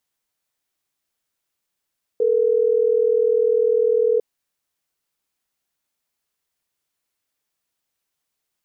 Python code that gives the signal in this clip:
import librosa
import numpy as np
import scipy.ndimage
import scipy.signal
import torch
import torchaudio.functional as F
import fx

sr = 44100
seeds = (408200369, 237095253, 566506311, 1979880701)

y = fx.call_progress(sr, length_s=3.12, kind='ringback tone', level_db=-17.5)